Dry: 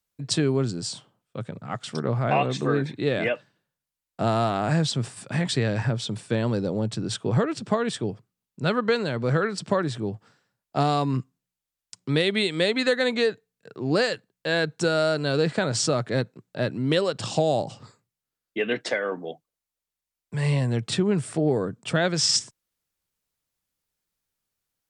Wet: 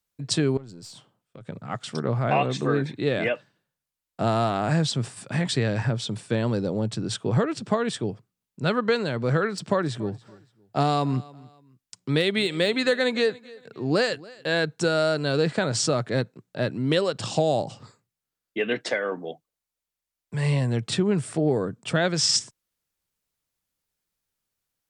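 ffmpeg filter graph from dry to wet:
-filter_complex "[0:a]asettb=1/sr,asplit=3[a][b][c];[a]atrim=end=0.574[d];[b]atrim=start=0.57:end=1.49,asetpts=PTS-STARTPTS,afade=t=in:d=0.004:c=qsin,afade=t=out:st=0.916:d=0.004:c=qsin,aeval=exprs='(tanh(10*val(0)+0.4)-tanh(0.4))/10':c=same,acompressor=threshold=-40dB:ratio=5:attack=3.2:release=140:knee=1:detection=peak[e];[c]atrim=start=1.486[f];[d][e]acrossfade=d=0.004:c1=hsin:c2=qsin[g];[g][f]acrossfade=d=0.004:c1=qsin:c2=hsin,asettb=1/sr,asplit=3[h][i][j];[h]atrim=end=9.554[k];[i]atrim=start=9.55:end=14.56,asetpts=PTS-STARTPTS,afade=t=in:d=0.004:c=qsin,afade=t=out:st=5.006:d=0.004:c=qsin,deesser=0.55,aecho=1:1:283|566:0.0794|0.0254,atrim=end_sample=220941[l];[j]atrim=start=14.556[m];[k][l]acrossfade=d=0.004:c1=hsin:c2=qsin[n];[n][m]acrossfade=d=0.004:c1=qsin:c2=hsin"

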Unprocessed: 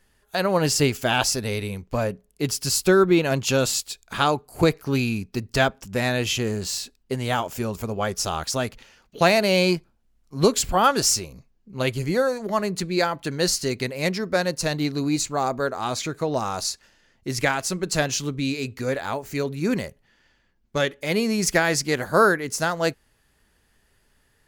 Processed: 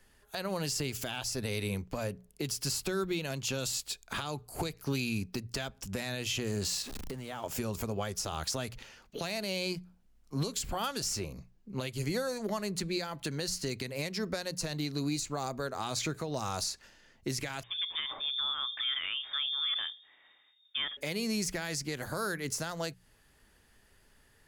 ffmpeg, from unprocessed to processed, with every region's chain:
-filter_complex "[0:a]asettb=1/sr,asplit=3[a][b][c];[a]atrim=end=6.824[d];[b]atrim=start=6.82:end=7.44,asetpts=PTS-STARTPTS,afade=t=in:d=0.004:c=qsin,afade=t=out:st=0.616:d=0.004:c=qsin,aeval=exprs='val(0)+0.5*0.0211*sgn(val(0))':c=same,acompressor=threshold=-37dB:ratio=8:attack=3.2:release=140:knee=1:detection=peak[e];[c]atrim=start=7.436[f];[d][e]acrossfade=d=0.004:c1=hsin:c2=qsin[g];[g][f]acrossfade=d=0.004:c1=qsin:c2=hsin,asettb=1/sr,asplit=3[h][i][j];[h]atrim=end=17.634[k];[i]atrim=start=17.63:end=20.97,asetpts=PTS-STARTPTS,afade=t=in:d=0.004:c=qsin,afade=t=out:st=3.336:d=0.004:c=qsin,bandreject=f=60:t=h:w=6,bandreject=f=120:t=h:w=6,bandreject=f=180:t=h:w=6,bandreject=f=240:t=h:w=6,bandreject=f=300:t=h:w=6,bandreject=f=360:t=h:w=6,bandreject=f=420:t=h:w=6,acompressor=threshold=-30dB:ratio=4:attack=3.2:release=140:knee=1:detection=peak,lowpass=f=3.1k:t=q:w=0.5098,lowpass=f=3.1k:t=q:w=0.6013,lowpass=f=3.1k:t=q:w=0.9,lowpass=f=3.1k:t=q:w=2.563,afreqshift=-3700[l];[j]atrim=start=20.966[m];[k][l]acrossfade=d=0.004:c1=hsin:c2=qsin[n];[n][m]acrossfade=d=0.004:c1=qsin:c2=hsin,acrossover=split=140|2900[o][p][q];[o]acompressor=threshold=-37dB:ratio=4[r];[p]acompressor=threshold=-31dB:ratio=4[s];[q]acompressor=threshold=-30dB:ratio=4[t];[r][s][t]amix=inputs=3:normalize=0,bandreject=f=60:t=h:w=6,bandreject=f=120:t=h:w=6,bandreject=f=180:t=h:w=6,alimiter=limit=-23dB:level=0:latency=1:release=195"

